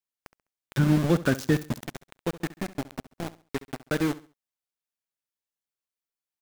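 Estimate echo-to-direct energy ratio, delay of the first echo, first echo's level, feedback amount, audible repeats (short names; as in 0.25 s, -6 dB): -16.5 dB, 68 ms, -17.0 dB, 30%, 2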